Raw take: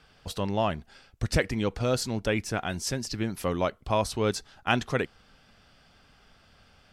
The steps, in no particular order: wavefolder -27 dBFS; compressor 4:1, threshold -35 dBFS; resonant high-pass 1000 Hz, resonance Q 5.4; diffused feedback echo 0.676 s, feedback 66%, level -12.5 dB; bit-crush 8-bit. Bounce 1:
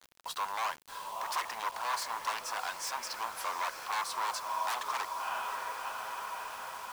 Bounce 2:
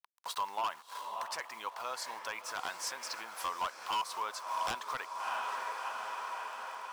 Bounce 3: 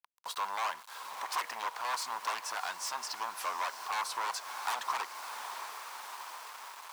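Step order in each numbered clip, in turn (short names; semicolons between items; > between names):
diffused feedback echo > wavefolder > compressor > resonant high-pass > bit-crush; bit-crush > diffused feedback echo > compressor > resonant high-pass > wavefolder; wavefolder > diffused feedback echo > bit-crush > compressor > resonant high-pass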